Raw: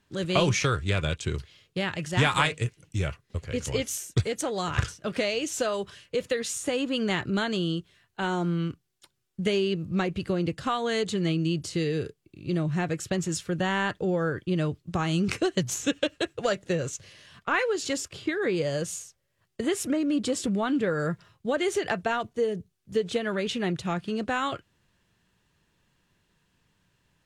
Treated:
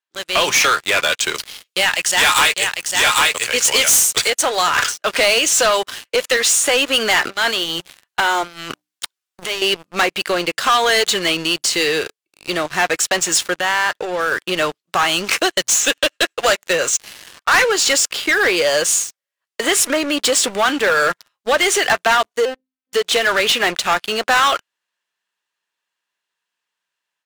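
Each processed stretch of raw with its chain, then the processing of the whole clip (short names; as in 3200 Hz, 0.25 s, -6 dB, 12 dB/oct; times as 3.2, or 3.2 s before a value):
1.35–4.3 high shelf 2900 Hz +11 dB + echo 0.799 s -6 dB
7.24–9.62 notches 60/120/180/240/300 Hz + sample leveller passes 1 + negative-ratio compressor -32 dBFS
13.54–14.32 compressor 3:1, threshold -30 dBFS + high shelf 7800 Hz -3.5 dB
22.45–22.93 notches 60/120/180/240 Hz + robotiser 259 Hz + air absorption 260 m
whole clip: HPF 830 Hz 12 dB/oct; AGC gain up to 10.5 dB; sample leveller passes 5; gain -7.5 dB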